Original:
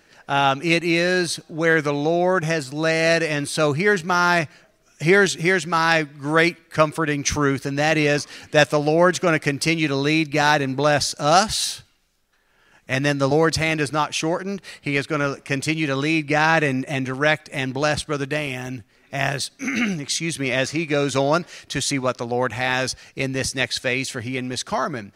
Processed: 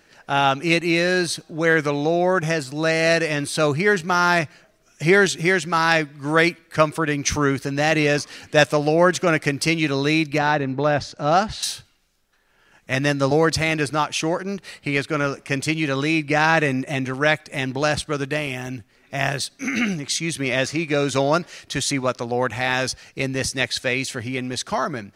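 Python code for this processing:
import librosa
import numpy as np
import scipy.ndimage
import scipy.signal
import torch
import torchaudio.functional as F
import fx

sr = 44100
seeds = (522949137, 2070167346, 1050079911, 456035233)

y = fx.spacing_loss(x, sr, db_at_10k=22, at=(10.38, 11.63))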